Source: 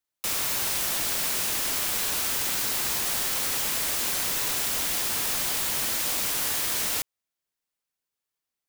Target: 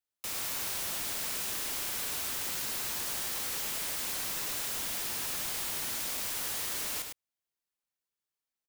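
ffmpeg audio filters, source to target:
-af "asoftclip=type=tanh:threshold=-23.5dB,aecho=1:1:105:0.531,volume=-6.5dB"

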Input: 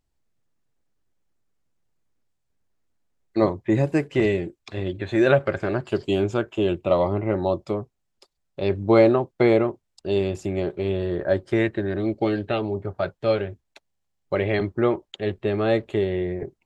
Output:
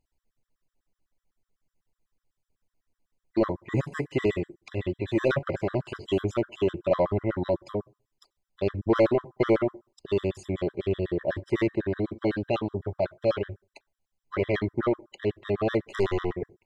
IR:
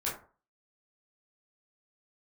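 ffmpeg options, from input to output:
-filter_complex "[0:a]asettb=1/sr,asplit=3[a][b][c];[a]atrim=end=15.834[d];[b]atrim=start=15.83:end=16.33,asetpts=PTS-STARTPTS,afade=t=in:d=0.004:c=qsin,afade=t=out:st=0.496:d=0.004:c=qsin,aeval=exprs='0.251*(cos(1*acos(clip(val(0)/0.251,-1,1)))-cos(1*PI/2))+0.0398*(cos(8*acos(clip(val(0)/0.251,-1,1)))-cos(8*PI/2))':c=same[e];[c]atrim=start=16.326[f];[d][e]acrossfade=d=0.004:c1=hsin:c2=qsin[g];[g][f]acrossfade=d=0.004:c1=qsin:c2=hsin,asoftclip=type=tanh:threshold=-13.5dB,asplit=2[h][i];[1:a]atrim=start_sample=2205,lowpass=3.7k[j];[i][j]afir=irnorm=-1:irlink=0,volume=-23dB[k];[h][k]amix=inputs=2:normalize=0,afftfilt=real='re*gt(sin(2*PI*8*pts/sr)*(1-2*mod(floor(b*sr/1024/1000),2)),0)':imag='im*gt(sin(2*PI*8*pts/sr)*(1-2*mod(floor(b*sr/1024/1000),2)),0)':win_size=1024:overlap=0.75"

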